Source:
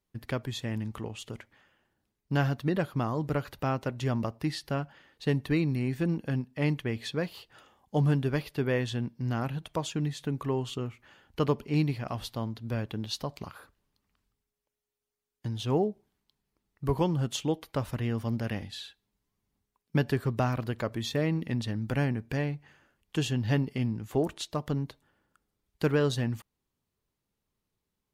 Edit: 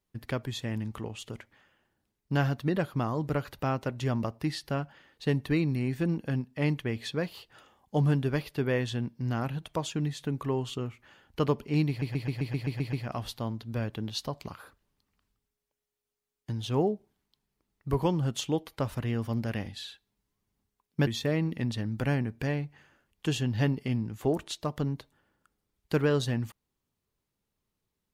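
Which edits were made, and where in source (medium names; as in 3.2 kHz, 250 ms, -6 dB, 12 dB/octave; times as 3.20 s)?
11.89 s: stutter 0.13 s, 9 plays
20.03–20.97 s: delete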